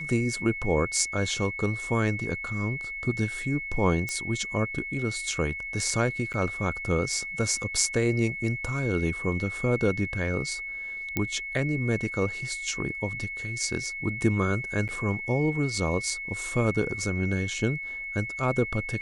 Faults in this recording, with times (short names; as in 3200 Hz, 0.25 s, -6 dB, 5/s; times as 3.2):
tone 2200 Hz -33 dBFS
4.09 pop -16 dBFS
6.33–6.34 gap 8.7 ms
11.17 pop -12 dBFS
14.88–14.89 gap 8.2 ms